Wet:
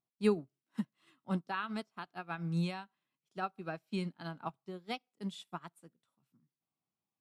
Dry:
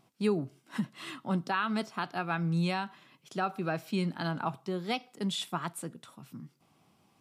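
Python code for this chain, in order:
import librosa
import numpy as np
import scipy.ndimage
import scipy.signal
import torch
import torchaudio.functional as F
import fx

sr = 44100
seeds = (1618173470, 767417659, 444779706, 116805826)

y = fx.upward_expand(x, sr, threshold_db=-44.0, expansion=2.5)
y = F.gain(torch.from_numpy(y), 1.0).numpy()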